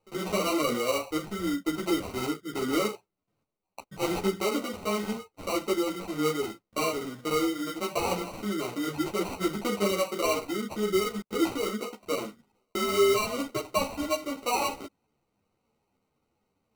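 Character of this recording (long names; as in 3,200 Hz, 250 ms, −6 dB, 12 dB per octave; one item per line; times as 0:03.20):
aliases and images of a low sample rate 1,700 Hz, jitter 0%
a shimmering, thickened sound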